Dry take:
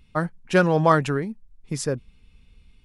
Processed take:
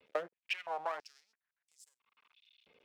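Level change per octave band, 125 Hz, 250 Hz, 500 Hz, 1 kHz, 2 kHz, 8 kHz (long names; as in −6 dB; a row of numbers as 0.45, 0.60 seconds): below −40 dB, −37.0 dB, −19.5 dB, −17.0 dB, −15.5 dB, −24.0 dB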